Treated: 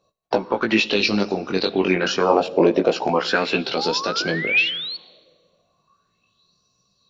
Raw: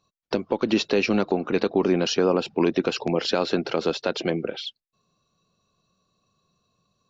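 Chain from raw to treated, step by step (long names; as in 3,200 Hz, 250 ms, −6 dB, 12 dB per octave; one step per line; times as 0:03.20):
chorus effect 0.29 Hz, delay 15.5 ms, depth 5.9 ms
sound drawn into the spectrogram rise, 0:03.76–0:04.97, 740–4,500 Hz −33 dBFS
on a send at −16 dB: convolution reverb RT60 1.7 s, pre-delay 20 ms
on the sum: auto-filter bell 0.37 Hz 550–5,400 Hz +16 dB
level +3 dB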